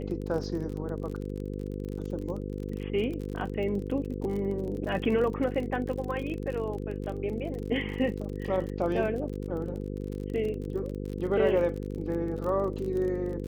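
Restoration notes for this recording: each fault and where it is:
mains buzz 50 Hz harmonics 10 −35 dBFS
surface crackle 37 per second −35 dBFS

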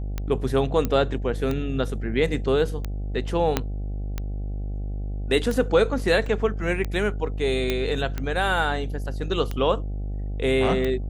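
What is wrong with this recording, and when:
mains buzz 50 Hz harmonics 16 −29 dBFS
scratch tick 45 rpm −15 dBFS
0:00.85: click −11 dBFS
0:03.57: click −6 dBFS
0:06.26: drop-out 3.3 ms
0:07.70: click −10 dBFS

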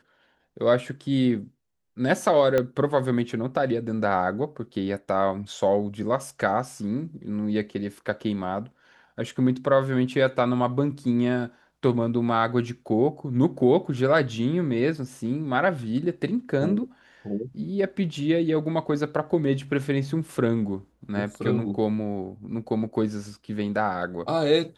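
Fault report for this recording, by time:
0:02.58: click −11 dBFS

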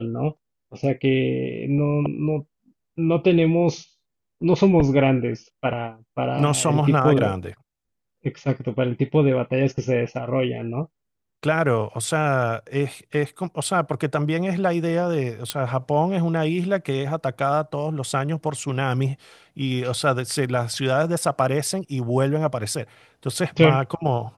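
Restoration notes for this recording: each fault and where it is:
0:15.50: click −6 dBFS

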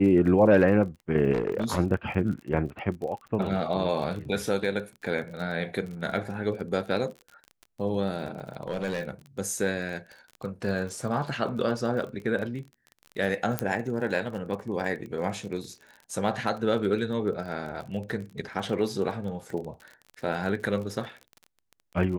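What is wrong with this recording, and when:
surface crackle 32 per second −35 dBFS
0:01.32–0:01.78: clipping −21.5 dBFS
0:08.63–0:09.11: clipping −24.5 dBFS
0:13.59: click −10 dBFS

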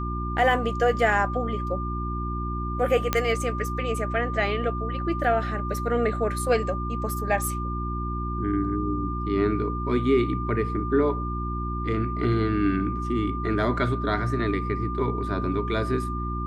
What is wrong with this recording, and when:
mains hum 60 Hz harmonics 6 −30 dBFS
whistle 1,200 Hz −32 dBFS
0:03.13: click −7 dBFS

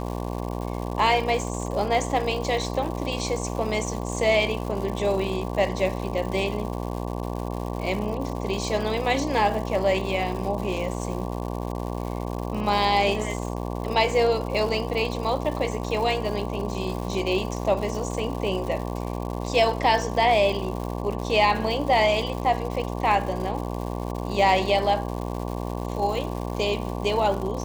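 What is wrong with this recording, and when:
mains buzz 60 Hz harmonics 19 −30 dBFS
surface crackle 250 per second −32 dBFS

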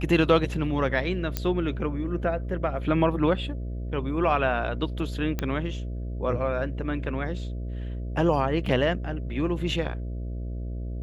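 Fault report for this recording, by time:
mains buzz 60 Hz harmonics 11 −32 dBFS
0:01.37: click −11 dBFS
0:05.39: click −14 dBFS
0:08.66: drop-out 3.1 ms

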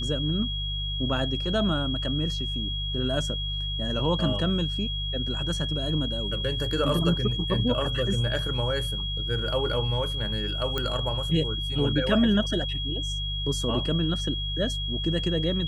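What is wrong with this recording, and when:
mains hum 50 Hz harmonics 3 −32 dBFS
whistle 3,300 Hz −31 dBFS
0:10.78: click −14 dBFS

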